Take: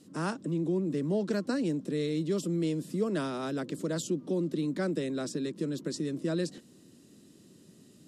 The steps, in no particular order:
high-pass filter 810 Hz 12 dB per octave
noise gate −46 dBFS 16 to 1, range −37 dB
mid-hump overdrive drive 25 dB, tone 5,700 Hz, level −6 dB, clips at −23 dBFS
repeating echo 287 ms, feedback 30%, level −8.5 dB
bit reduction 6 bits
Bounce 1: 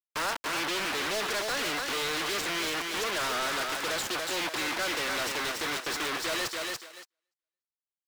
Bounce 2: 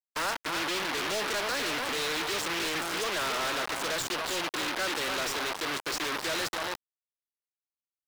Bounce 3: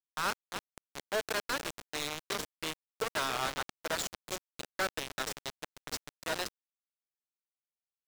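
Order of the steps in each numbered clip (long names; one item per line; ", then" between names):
bit reduction, then repeating echo, then noise gate, then high-pass filter, then mid-hump overdrive
repeating echo, then bit reduction, then high-pass filter, then noise gate, then mid-hump overdrive
high-pass filter, then noise gate, then repeating echo, then bit reduction, then mid-hump overdrive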